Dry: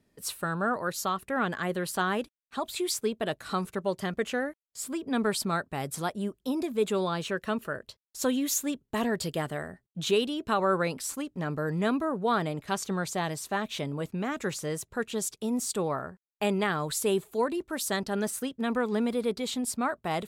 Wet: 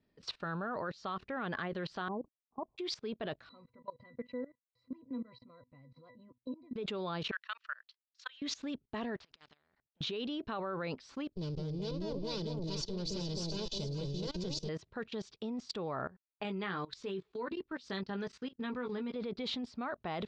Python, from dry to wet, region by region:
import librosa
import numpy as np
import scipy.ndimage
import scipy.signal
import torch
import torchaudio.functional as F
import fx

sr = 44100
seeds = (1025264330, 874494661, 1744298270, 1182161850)

y = fx.chain(x, sr, fx.cheby_ripple(hz=1100.0, ripple_db=3),
    fx.level_steps(step_db=13), at=(2.08, 2.78))
y = fx.chain(y, sr, fx.notch(hz=1100.0, q=21.0),
    fx.octave_resonator(note='B', decay_s=0.12), at=(3.49, 6.76))
y = fx.chain(y, sr, fx.highpass(hz=1300.0, slope=24),
    fx.level_steps(step_db=19), at=(7.31, 8.42))
y = fx.chain(y, sr, fx.level_steps(step_db=24),
    fx.spectral_comp(ratio=4.0), at=(9.16, 10.01))
y = fx.chain(y, sr, fx.lower_of_two(delay_ms=2.0),
    fx.curve_eq(hz=(250.0, 1800.0, 4700.0), db=(0, -24, 11)),
    fx.echo_alternate(ms=213, hz=840.0, feedback_pct=58, wet_db=-2.5), at=(11.32, 14.69))
y = fx.chain(y, sr, fx.peak_eq(hz=680.0, db=-9.0, octaves=0.42),
    fx.doubler(ms=16.0, db=-6),
    fx.upward_expand(threshold_db=-44.0, expansion=1.5), at=(16.43, 19.16))
y = scipy.signal.sosfilt(scipy.signal.butter(6, 5000.0, 'lowpass', fs=sr, output='sos'), y)
y = fx.level_steps(y, sr, step_db=20)
y = y * librosa.db_to_amplitude(2.5)